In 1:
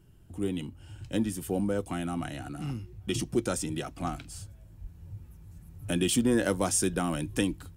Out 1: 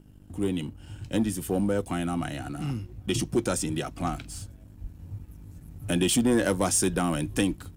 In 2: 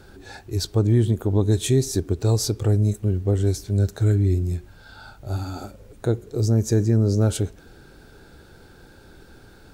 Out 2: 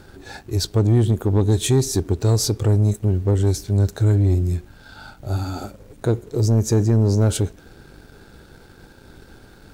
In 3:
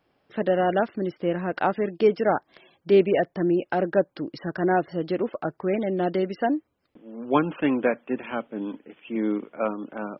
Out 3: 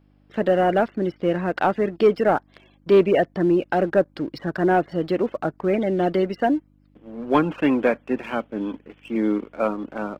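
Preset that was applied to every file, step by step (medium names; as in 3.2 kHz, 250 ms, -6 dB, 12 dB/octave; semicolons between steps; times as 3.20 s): mains buzz 50 Hz, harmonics 6, -56 dBFS -2 dB/octave; waveshaping leveller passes 1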